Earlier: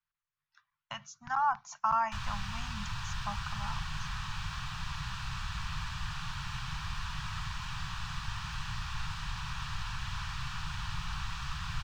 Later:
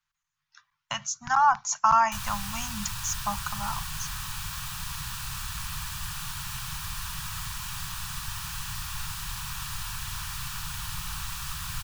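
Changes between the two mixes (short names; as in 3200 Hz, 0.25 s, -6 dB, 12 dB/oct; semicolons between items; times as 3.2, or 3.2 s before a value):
speech +7.5 dB; master: remove air absorption 160 m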